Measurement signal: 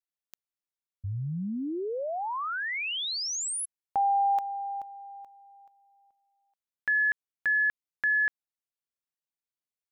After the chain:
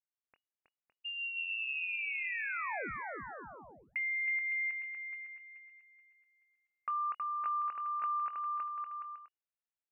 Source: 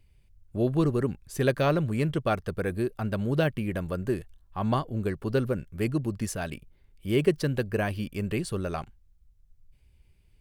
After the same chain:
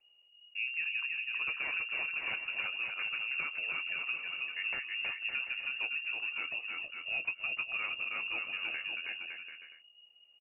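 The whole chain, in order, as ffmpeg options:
-filter_complex "[0:a]asplit=2[a][b];[b]adelay=23,volume=-12dB[c];[a][c]amix=inputs=2:normalize=0,acrossover=split=260|500|2100[d][e][f][g];[f]aeval=exprs='(mod(12.6*val(0)+1,2)-1)/12.6':c=same[h];[d][e][h][g]amix=inputs=4:normalize=0,aecho=1:1:320|560|740|875|976.2:0.631|0.398|0.251|0.158|0.1,acompressor=threshold=-25dB:ratio=3:attack=7.1:release=565:knee=1:detection=peak,lowpass=f=2.5k:t=q:w=0.5098,lowpass=f=2.5k:t=q:w=0.6013,lowpass=f=2.5k:t=q:w=0.9,lowpass=f=2.5k:t=q:w=2.563,afreqshift=-2900,volume=-7dB"

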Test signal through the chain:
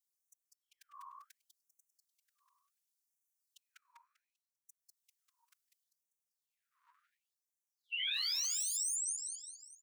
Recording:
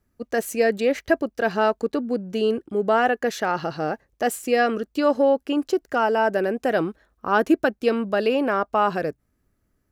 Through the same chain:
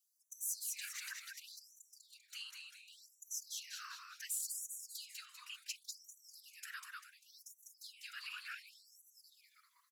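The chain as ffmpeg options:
-filter_complex "[0:a]acompressor=threshold=-30dB:ratio=3,firequalizer=gain_entry='entry(230,0);entry(340,-12);entry(510,10);entry(910,-19);entry(1400,2);entry(6300,14)':delay=0.05:min_phase=1,asplit=7[a][b][c][d][e][f][g];[b]adelay=197,afreqshift=-150,volume=-3.5dB[h];[c]adelay=394,afreqshift=-300,volume=-10.4dB[i];[d]adelay=591,afreqshift=-450,volume=-17.4dB[j];[e]adelay=788,afreqshift=-600,volume=-24.3dB[k];[f]adelay=985,afreqshift=-750,volume=-31.2dB[l];[g]adelay=1182,afreqshift=-900,volume=-38.2dB[m];[a][h][i][j][k][l][m]amix=inputs=7:normalize=0,volume=15dB,asoftclip=hard,volume=-15dB,afftfilt=real='hypot(re,im)*cos(2*PI*random(0))':imag='hypot(re,im)*sin(2*PI*random(1))':win_size=512:overlap=0.75,highpass=f=57:w=0.5412,highpass=f=57:w=1.3066,lowshelf=f=250:g=-5,alimiter=limit=-24dB:level=0:latency=1:release=17,afftfilt=real='re*gte(b*sr/1024,930*pow(5800/930,0.5+0.5*sin(2*PI*0.69*pts/sr)))':imag='im*gte(b*sr/1024,930*pow(5800/930,0.5+0.5*sin(2*PI*0.69*pts/sr)))':win_size=1024:overlap=0.75,volume=-4.5dB"

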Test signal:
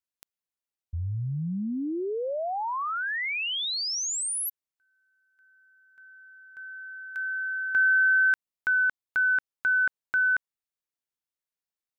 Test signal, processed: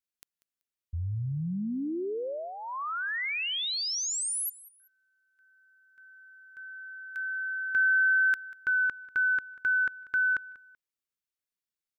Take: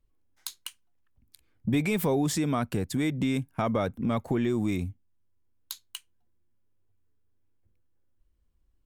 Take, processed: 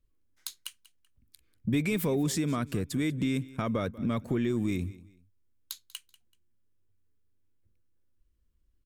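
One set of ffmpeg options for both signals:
-af "equalizer=f=790:w=2.3:g=-9.5,aecho=1:1:191|382:0.106|0.0307,volume=-1.5dB"

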